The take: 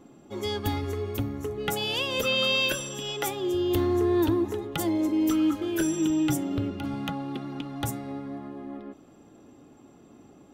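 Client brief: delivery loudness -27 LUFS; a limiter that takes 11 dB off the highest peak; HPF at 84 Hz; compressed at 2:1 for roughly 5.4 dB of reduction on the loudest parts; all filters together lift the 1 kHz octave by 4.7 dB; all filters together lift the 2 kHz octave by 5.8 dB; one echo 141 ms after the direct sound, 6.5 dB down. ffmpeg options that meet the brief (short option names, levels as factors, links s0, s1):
-af "highpass=84,equalizer=f=1000:t=o:g=4,equalizer=f=2000:t=o:g=8,acompressor=threshold=0.0398:ratio=2,alimiter=limit=0.0708:level=0:latency=1,aecho=1:1:141:0.473,volume=1.5"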